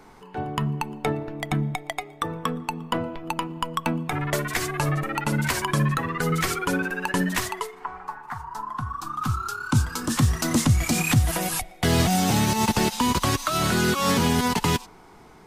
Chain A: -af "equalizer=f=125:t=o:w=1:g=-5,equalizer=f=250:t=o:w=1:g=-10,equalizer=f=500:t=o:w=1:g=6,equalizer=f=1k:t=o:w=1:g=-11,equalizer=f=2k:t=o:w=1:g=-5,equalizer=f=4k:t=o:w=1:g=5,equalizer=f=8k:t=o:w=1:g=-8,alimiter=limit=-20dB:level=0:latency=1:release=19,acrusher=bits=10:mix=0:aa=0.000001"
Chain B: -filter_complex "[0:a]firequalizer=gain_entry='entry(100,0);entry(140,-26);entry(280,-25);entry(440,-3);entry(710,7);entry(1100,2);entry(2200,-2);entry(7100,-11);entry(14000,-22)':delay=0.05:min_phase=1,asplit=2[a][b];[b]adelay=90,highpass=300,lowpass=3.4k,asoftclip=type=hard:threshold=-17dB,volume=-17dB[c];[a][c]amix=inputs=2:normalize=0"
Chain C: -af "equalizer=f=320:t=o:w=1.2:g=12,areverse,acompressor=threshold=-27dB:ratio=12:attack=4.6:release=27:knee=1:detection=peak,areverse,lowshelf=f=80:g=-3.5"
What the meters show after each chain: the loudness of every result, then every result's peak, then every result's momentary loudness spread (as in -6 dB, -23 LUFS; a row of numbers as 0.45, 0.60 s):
-31.0, -26.5, -30.0 LUFS; -20.0, -9.0, -17.0 dBFS; 11, 8, 4 LU